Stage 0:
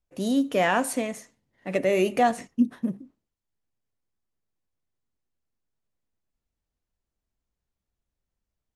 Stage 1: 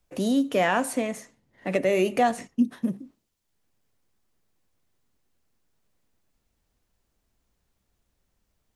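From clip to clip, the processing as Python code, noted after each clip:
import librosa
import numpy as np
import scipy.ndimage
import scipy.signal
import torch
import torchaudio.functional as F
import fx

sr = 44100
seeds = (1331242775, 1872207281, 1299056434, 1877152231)

y = fx.band_squash(x, sr, depth_pct=40)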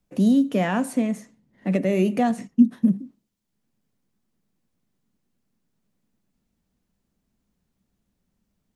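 y = fx.peak_eq(x, sr, hz=200.0, db=14.0, octaves=1.1)
y = F.gain(torch.from_numpy(y), -4.0).numpy()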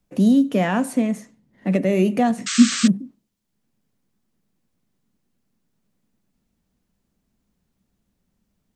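y = fx.spec_paint(x, sr, seeds[0], shape='noise', start_s=2.46, length_s=0.42, low_hz=1100.0, high_hz=8400.0, level_db=-28.0)
y = F.gain(torch.from_numpy(y), 2.5).numpy()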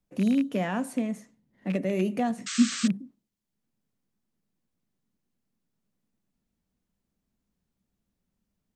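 y = fx.rattle_buzz(x, sr, strikes_db=-18.0, level_db=-19.0)
y = F.gain(torch.from_numpy(y), -8.5).numpy()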